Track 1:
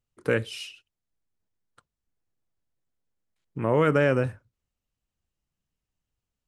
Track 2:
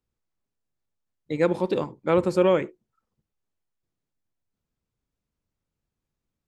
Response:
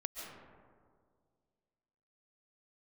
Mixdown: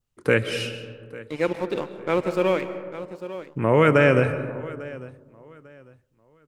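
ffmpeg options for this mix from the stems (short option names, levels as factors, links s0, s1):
-filter_complex "[0:a]volume=1.12,asplit=3[s0][s1][s2];[s1]volume=0.668[s3];[s2]volume=0.158[s4];[1:a]highpass=f=180:p=1,aeval=exprs='sgn(val(0))*max(abs(val(0))-0.0126,0)':c=same,volume=0.668,asplit=3[s5][s6][s7];[s6]volume=0.562[s8];[s7]volume=0.316[s9];[2:a]atrim=start_sample=2205[s10];[s3][s8]amix=inputs=2:normalize=0[s11];[s11][s10]afir=irnorm=-1:irlink=0[s12];[s4][s9]amix=inputs=2:normalize=0,aecho=0:1:848|1696|2544|3392:1|0.28|0.0784|0.022[s13];[s0][s5][s12][s13]amix=inputs=4:normalize=0,adynamicequalizer=threshold=0.00562:dfrequency=2300:dqfactor=2.8:tfrequency=2300:tqfactor=2.8:attack=5:release=100:ratio=0.375:range=3:mode=boostabove:tftype=bell"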